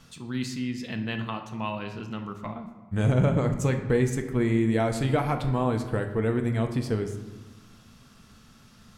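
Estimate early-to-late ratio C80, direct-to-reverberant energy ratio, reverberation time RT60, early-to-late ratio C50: 10.5 dB, 5.0 dB, 1.2 s, 8.5 dB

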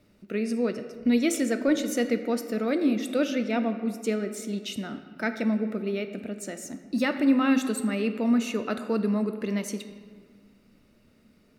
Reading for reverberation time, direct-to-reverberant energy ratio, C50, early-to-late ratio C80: 1.7 s, 7.5 dB, 9.5 dB, 11.0 dB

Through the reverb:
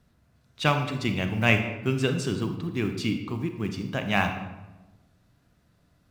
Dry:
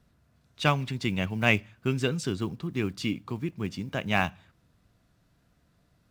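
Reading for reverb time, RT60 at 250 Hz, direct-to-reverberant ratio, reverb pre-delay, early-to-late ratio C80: 1.1 s, 1.4 s, 6.0 dB, 31 ms, 9.5 dB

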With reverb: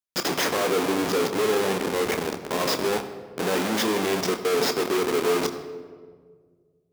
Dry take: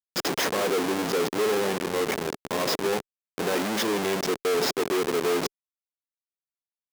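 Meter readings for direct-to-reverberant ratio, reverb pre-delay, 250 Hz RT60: 6.5 dB, 27 ms, 2.0 s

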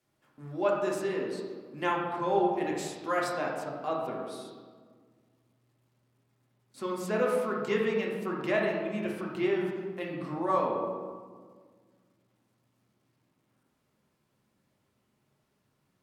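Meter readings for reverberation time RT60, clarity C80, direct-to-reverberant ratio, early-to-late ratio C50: 1.7 s, 4.0 dB, -2.5 dB, 2.0 dB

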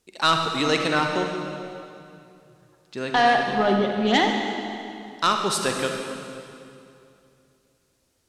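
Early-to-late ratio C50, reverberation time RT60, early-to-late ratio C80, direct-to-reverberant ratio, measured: 3.0 dB, 2.6 s, 4.0 dB, 2.5 dB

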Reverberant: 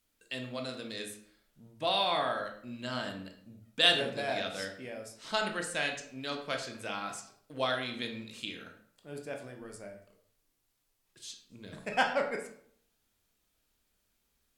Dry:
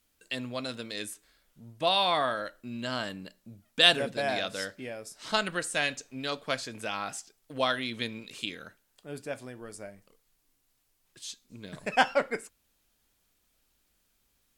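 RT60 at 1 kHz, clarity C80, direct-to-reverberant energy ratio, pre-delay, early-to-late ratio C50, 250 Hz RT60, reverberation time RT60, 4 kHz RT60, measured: 0.65 s, 11.0 dB, 3.0 dB, 16 ms, 8.5 dB, 0.65 s, 0.65 s, 0.45 s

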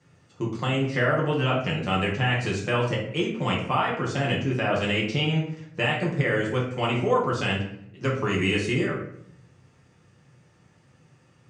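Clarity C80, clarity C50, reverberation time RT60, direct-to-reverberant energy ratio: 9.0 dB, 5.0 dB, 0.70 s, -4.0 dB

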